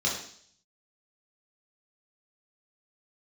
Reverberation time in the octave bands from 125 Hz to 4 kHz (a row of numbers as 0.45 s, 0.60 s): 0.75 s, 0.60 s, 0.60 s, 0.55 s, 0.60 s, 0.75 s